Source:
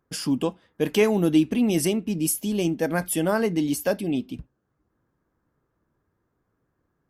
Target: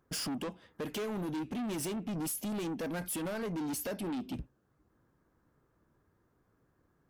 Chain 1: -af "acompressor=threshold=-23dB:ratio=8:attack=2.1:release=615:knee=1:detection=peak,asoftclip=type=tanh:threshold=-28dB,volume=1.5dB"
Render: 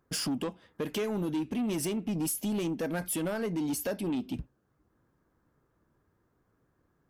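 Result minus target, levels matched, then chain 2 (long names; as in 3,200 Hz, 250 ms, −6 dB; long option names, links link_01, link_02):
soft clipping: distortion −6 dB
-af "acompressor=threshold=-23dB:ratio=8:attack=2.1:release=615:knee=1:detection=peak,asoftclip=type=tanh:threshold=-35dB,volume=1.5dB"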